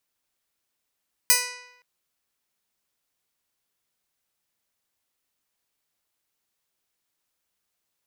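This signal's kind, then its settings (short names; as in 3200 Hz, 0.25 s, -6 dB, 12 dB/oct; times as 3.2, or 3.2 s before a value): plucked string B4, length 0.52 s, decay 0.89 s, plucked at 0.13, bright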